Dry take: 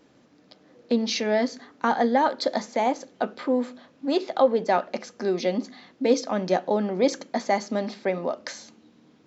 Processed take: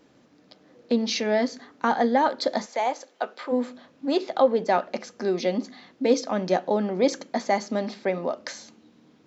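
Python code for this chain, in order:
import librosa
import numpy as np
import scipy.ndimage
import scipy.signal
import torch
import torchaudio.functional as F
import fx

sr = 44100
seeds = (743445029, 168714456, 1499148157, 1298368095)

y = fx.highpass(x, sr, hz=540.0, slope=12, at=(2.65, 3.51), fade=0.02)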